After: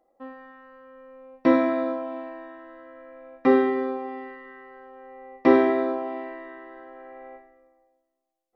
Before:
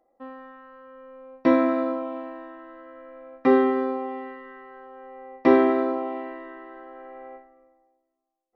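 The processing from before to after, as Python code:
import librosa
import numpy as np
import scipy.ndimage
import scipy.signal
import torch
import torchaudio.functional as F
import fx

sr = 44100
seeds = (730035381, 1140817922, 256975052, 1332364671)

y = fx.rev_schroeder(x, sr, rt60_s=0.69, comb_ms=30, drr_db=7.5)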